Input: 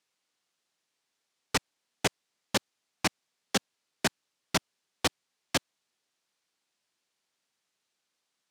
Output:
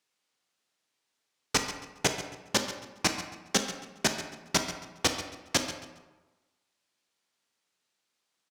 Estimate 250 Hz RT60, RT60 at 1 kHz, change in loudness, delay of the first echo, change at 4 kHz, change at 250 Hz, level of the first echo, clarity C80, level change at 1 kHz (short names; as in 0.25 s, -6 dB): 1.1 s, 1.2 s, +1.5 dB, 0.137 s, +2.5 dB, +1.5 dB, -13.5 dB, 8.5 dB, +1.5 dB